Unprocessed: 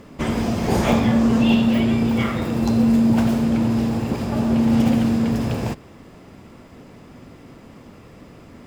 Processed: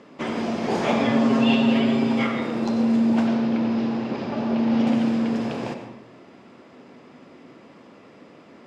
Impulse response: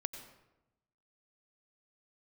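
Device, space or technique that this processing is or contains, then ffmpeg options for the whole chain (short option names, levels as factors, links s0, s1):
supermarket ceiling speaker: -filter_complex "[0:a]asettb=1/sr,asplit=3[s0][s1][s2];[s0]atrim=end=0.994[s3];[s1]atrim=start=0.99:end=2.27,asetpts=PTS-STARTPTS,afade=t=in:d=0.004:c=qsin,afade=t=out:st=1.276:d=0.004:c=qsin,aecho=1:1:7.4:0.93,atrim=end_sample=56448[s4];[s2]atrim=start=2.266[s5];[s3][s4]acrossfade=d=0.004:c1=hsin:c2=qsin[s6];[s6][s5]acrossfade=d=0.004:c1=qsin:c2=hsin,asettb=1/sr,asplit=3[s7][s8][s9];[s7]atrim=end=3.274[s10];[s8]atrim=start=3.27:end=4.87,asetpts=PTS-STARTPTS,afade=t=in:d=0.004:c=qsin,afade=t=out:st=1.596:d=0.004:c=qsin,lowpass=f=5900:w=0.5412,lowpass=f=5900:w=1.3066[s11];[s9]atrim=start=4.866[s12];[s10][s11]acrossfade=d=0.004:c1=hsin:c2=qsin[s13];[s13][s12]acrossfade=d=0.004:c1=qsin:c2=hsin,highpass=250,lowpass=5100[s14];[1:a]atrim=start_sample=2205[s15];[s14][s15]afir=irnorm=-1:irlink=0,volume=0.891"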